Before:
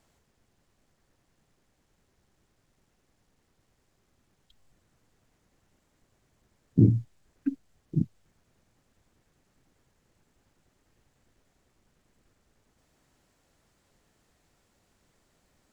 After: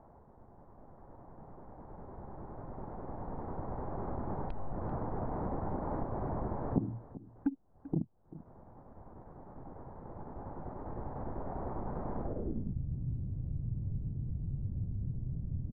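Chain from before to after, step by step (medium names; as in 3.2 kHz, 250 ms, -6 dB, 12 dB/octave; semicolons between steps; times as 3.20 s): local Wiener filter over 15 samples; recorder AGC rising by 5.9 dB/s; dynamic bell 280 Hz, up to +5 dB, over -43 dBFS, Q 0.98; compression 6:1, threshold -44 dBFS, peak gain reduction 36.5 dB; delay 390 ms -16.5 dB; low-pass sweep 890 Hz -> 120 Hz, 12.21–12.79 s; trim +10.5 dB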